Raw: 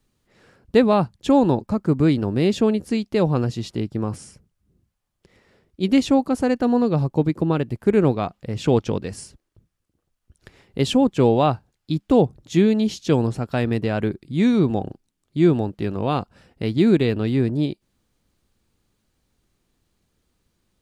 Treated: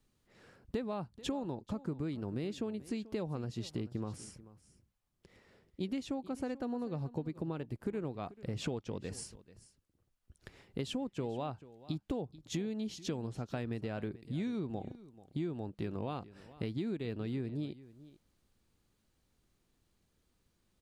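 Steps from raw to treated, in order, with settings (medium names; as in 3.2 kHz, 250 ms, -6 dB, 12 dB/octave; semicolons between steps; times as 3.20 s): compression 10:1, threshold -28 dBFS, peak gain reduction 18 dB; on a send: delay 437 ms -18 dB; on the sum: trim -6 dB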